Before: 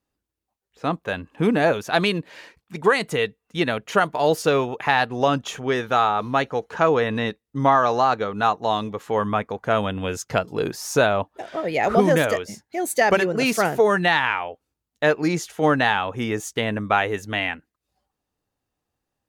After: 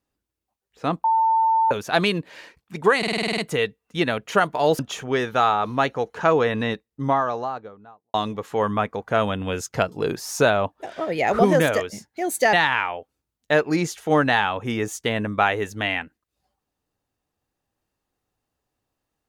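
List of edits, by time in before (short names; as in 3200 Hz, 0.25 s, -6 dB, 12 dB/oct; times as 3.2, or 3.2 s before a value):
1.04–1.71 bleep 896 Hz -15.5 dBFS
2.98 stutter 0.05 s, 9 plays
4.39–5.35 cut
7.13–8.7 studio fade out
13.09–14.05 cut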